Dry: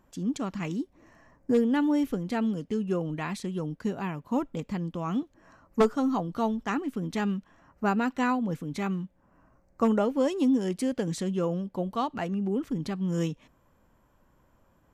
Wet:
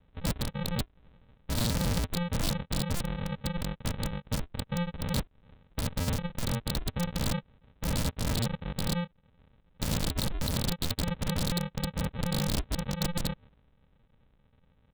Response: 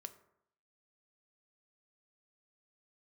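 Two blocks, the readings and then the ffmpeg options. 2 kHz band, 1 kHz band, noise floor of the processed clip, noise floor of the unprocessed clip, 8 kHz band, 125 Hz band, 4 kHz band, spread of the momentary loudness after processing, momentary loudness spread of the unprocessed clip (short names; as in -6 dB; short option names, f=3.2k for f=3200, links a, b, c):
-2.0 dB, -7.0 dB, -66 dBFS, -66 dBFS, +9.0 dB, +4.0 dB, +10.0 dB, 6 LU, 9 LU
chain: -af "aresample=8000,acrusher=samples=23:mix=1:aa=0.000001,aresample=44100,aeval=exprs='(mod(15.8*val(0)+1,2)-1)/15.8':c=same"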